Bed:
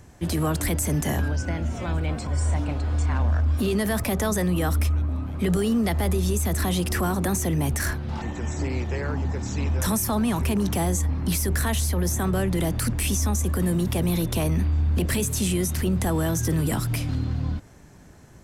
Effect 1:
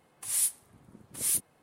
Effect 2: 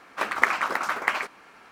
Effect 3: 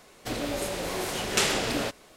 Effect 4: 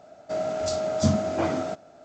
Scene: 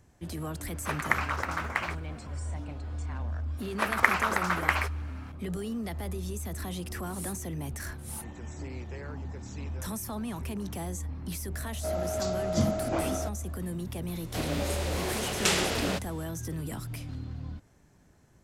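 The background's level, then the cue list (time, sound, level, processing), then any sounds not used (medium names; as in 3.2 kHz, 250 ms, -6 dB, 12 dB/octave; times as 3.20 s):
bed -12 dB
0.68 s: add 2 -6 dB
3.61 s: add 2 -1.5 dB
6.84 s: add 1 -14 dB
11.54 s: add 4 -4.5 dB
14.08 s: add 3 -1.5 dB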